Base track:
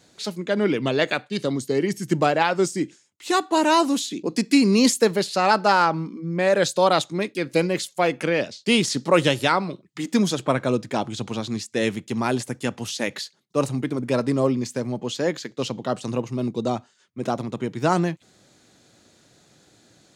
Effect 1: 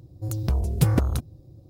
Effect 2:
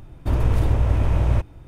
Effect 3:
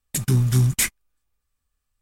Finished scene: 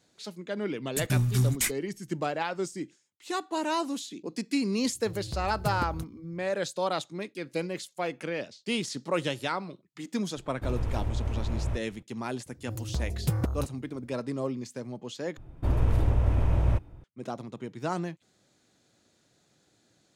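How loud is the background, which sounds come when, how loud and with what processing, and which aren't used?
base track -11 dB
0.82 add 3 -6.5 dB
4.84 add 1 -12 dB
10.36 add 2 -11.5 dB
12.46 add 1 -7.5 dB
15.37 replace with 2 -5 dB + mismatched tape noise reduction decoder only

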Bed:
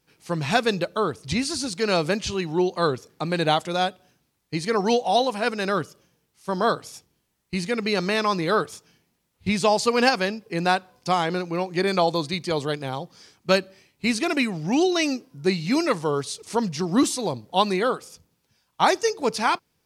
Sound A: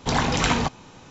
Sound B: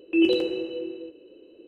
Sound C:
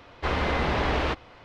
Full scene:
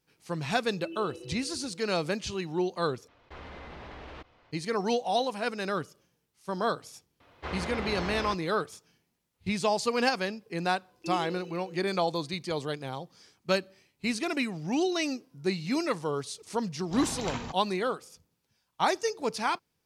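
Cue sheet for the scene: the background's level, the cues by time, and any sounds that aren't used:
bed -7 dB
0.7 add B -16.5 dB + compressor, threshold -22 dBFS
3.08 replace with C -8.5 dB + level quantiser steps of 18 dB
7.2 add C -9.5 dB + HPF 53 Hz
10.91 add B -15.5 dB + G.711 law mismatch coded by A
16.84 add A -15 dB + attack slew limiter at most 380 dB/s

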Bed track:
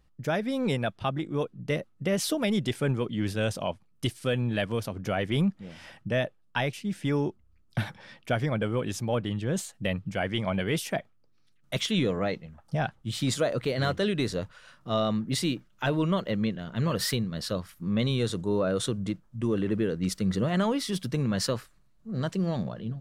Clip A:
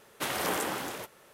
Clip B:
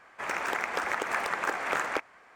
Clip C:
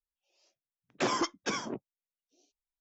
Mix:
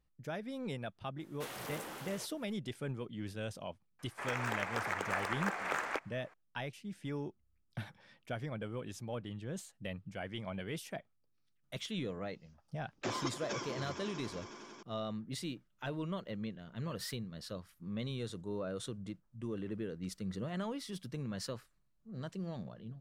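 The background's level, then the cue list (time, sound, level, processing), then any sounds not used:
bed track -13 dB
1.2 add A -9.5 dB + soft clip -31 dBFS
3.99 add B -6.5 dB
12.03 add C -8.5 dB + swelling echo 92 ms, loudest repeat 5, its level -13 dB

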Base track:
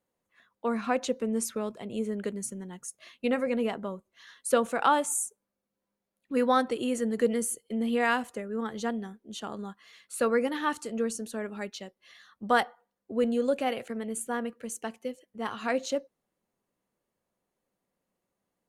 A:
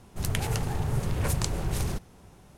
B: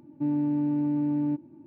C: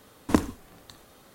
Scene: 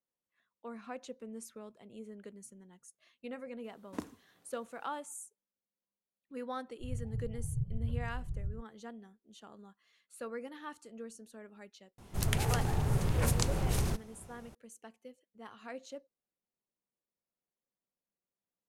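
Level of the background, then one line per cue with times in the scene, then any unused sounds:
base track -16 dB
3.64 add C -18 dB + HPF 120 Hz
6.64 add A -15 dB + spectral expander 2.5:1
11.98 add A -2 dB
not used: B

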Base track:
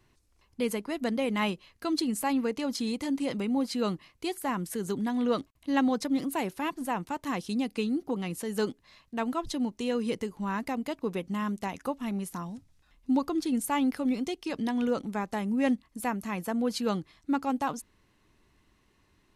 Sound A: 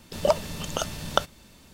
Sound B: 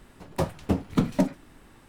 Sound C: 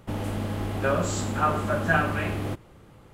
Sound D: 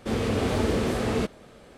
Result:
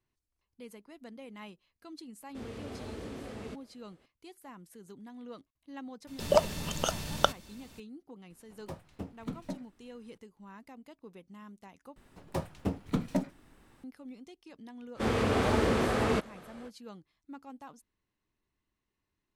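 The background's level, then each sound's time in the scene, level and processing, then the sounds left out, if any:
base track -18.5 dB
2.29 add D -17.5 dB
6.07 add A -2 dB
8.3 add B -16.5 dB
11.96 replace with B -7.5 dB
14.94 add D -4 dB, fades 0.05 s + bell 1200 Hz +6.5 dB 2 oct
not used: C

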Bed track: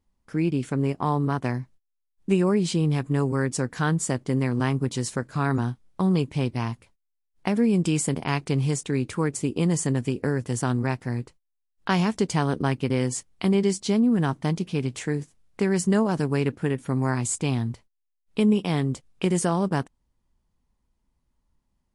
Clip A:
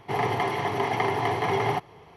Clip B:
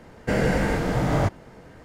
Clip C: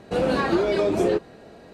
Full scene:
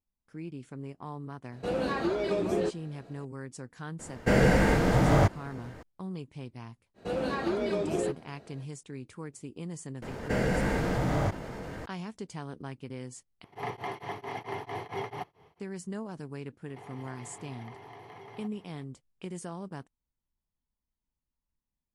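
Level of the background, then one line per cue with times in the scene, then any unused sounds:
bed track -16.5 dB
1.52 add C -8 dB
3.99 add B
6.94 add C -9 dB, fades 0.05 s
10.02 add B -7 dB + fast leveller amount 50%
13.44 replace with A -9 dB + beating tremolo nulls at 4.5 Hz
16.68 add A -9.5 dB + compressor 5:1, threshold -37 dBFS

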